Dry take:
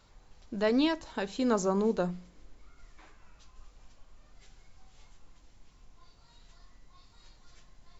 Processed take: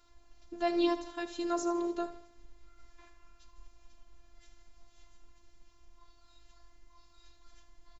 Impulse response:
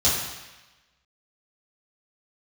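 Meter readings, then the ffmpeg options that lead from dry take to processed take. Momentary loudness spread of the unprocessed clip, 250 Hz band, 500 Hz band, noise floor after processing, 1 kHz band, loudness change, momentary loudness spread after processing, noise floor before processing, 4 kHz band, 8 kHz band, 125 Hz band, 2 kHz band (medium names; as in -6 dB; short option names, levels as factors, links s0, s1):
11 LU, -4.0 dB, -4.5 dB, -62 dBFS, -0.5 dB, -3.5 dB, 11 LU, -61 dBFS, -4.0 dB, no reading, under -20 dB, -5.5 dB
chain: -af "aecho=1:1:77|154|231|308:0.211|0.0951|0.0428|0.0193,afftfilt=real='hypot(re,im)*cos(PI*b)':imag='0':win_size=512:overlap=0.75"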